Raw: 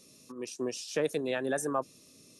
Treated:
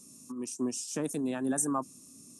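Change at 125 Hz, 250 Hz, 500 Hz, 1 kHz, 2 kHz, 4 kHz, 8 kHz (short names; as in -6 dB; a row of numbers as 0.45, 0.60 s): +2.0, +5.0, -6.0, -0.5, -7.5, -4.0, +7.0 dB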